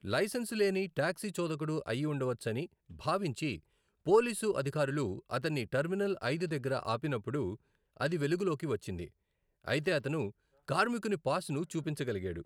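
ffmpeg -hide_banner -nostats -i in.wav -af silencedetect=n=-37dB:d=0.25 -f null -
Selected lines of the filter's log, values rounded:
silence_start: 2.65
silence_end: 3.06 | silence_duration: 0.41
silence_start: 3.55
silence_end: 4.07 | silence_duration: 0.52
silence_start: 7.54
silence_end: 8.00 | silence_duration: 0.46
silence_start: 9.04
silence_end: 9.68 | silence_duration: 0.63
silence_start: 10.29
silence_end: 10.68 | silence_duration: 0.40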